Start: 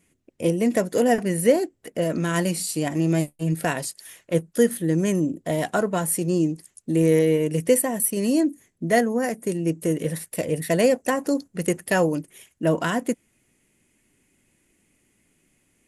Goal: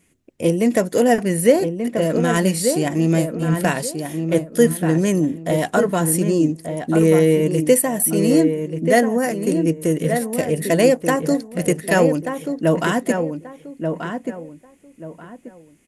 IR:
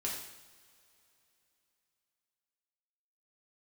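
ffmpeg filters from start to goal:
-filter_complex "[0:a]asplit=2[a][b];[b]adelay=1184,lowpass=f=1.8k:p=1,volume=-6dB,asplit=2[c][d];[d]adelay=1184,lowpass=f=1.8k:p=1,volume=0.27,asplit=2[e][f];[f]adelay=1184,lowpass=f=1.8k:p=1,volume=0.27[g];[a][c][e][g]amix=inputs=4:normalize=0,volume=4dB"

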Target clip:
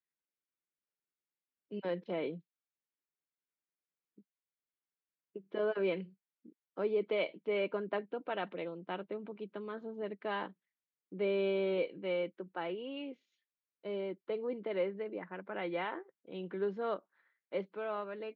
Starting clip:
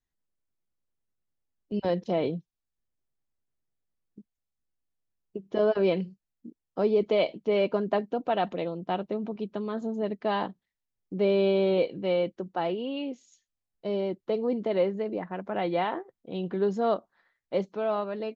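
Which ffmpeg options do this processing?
-af "highpass=f=180:w=0.5412,highpass=f=180:w=1.3066,equalizer=f=230:t=q:w=4:g=-7,equalizer=f=720:t=q:w=4:g=-7,equalizer=f=1.5k:t=q:w=4:g=5,equalizer=f=2.2k:t=q:w=4:g=5,lowpass=f=3.6k:w=0.5412,lowpass=f=3.6k:w=1.3066,volume=-7.5dB"

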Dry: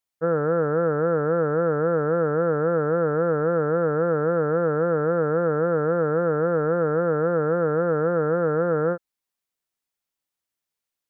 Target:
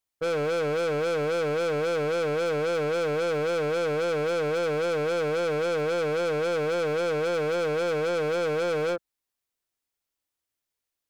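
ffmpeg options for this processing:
-filter_complex "[0:a]equalizer=f=180:t=o:w=0.66:g=-9.5,asplit=2[a][b];[b]adynamicsmooth=sensitivity=3.5:basefreq=610,volume=-3dB[c];[a][c]amix=inputs=2:normalize=0,volume=25dB,asoftclip=hard,volume=-25dB"

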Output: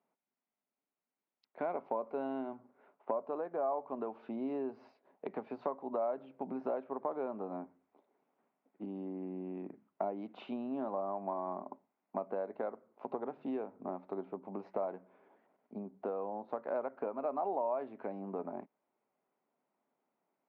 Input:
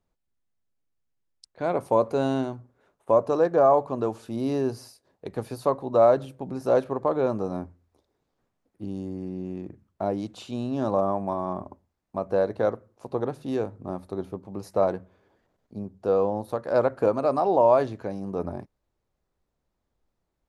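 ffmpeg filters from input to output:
-af "acompressor=threshold=-34dB:ratio=6,highpass=f=250:w=0.5412,highpass=f=250:w=1.3066,equalizer=f=330:t=q:w=4:g=-8,equalizer=f=500:t=q:w=4:g=-7,equalizer=f=1.2k:t=q:w=4:g=-4,equalizer=f=1.7k:t=q:w=4:g=-8,lowpass=f=2.2k:w=0.5412,lowpass=f=2.2k:w=1.3066,volume=4dB"

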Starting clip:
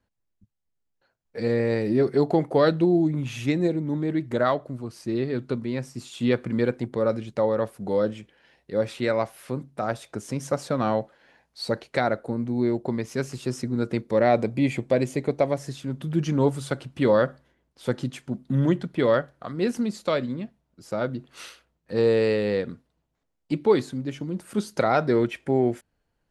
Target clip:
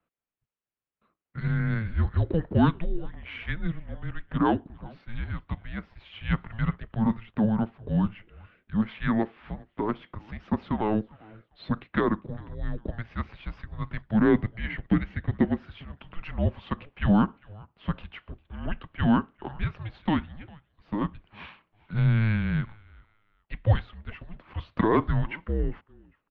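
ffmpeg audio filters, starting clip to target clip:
-filter_complex "[0:a]asplit=3[a][b][c];[b]adelay=401,afreqshift=-100,volume=-23.5dB[d];[c]adelay=802,afreqshift=-200,volume=-33.7dB[e];[a][d][e]amix=inputs=3:normalize=0,highpass=f=380:t=q:w=0.5412,highpass=f=380:t=q:w=1.307,lowpass=f=3.4k:t=q:w=0.5176,lowpass=f=3.4k:t=q:w=0.7071,lowpass=f=3.4k:t=q:w=1.932,afreqshift=-330"

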